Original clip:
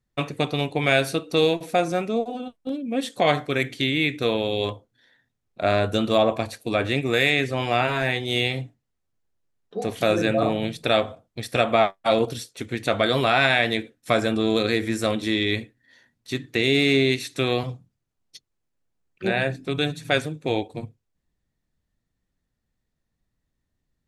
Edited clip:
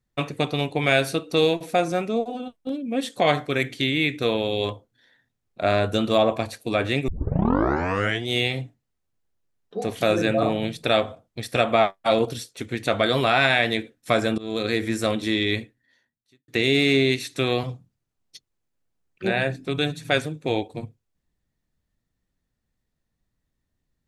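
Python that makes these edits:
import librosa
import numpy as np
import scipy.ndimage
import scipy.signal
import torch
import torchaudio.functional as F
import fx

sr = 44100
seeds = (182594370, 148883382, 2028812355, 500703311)

y = fx.edit(x, sr, fx.tape_start(start_s=7.08, length_s=1.2),
    fx.fade_in_from(start_s=14.38, length_s=0.54, curve='qsin', floor_db=-21.5),
    fx.fade_out_span(start_s=15.58, length_s=0.9, curve='qua'), tone=tone)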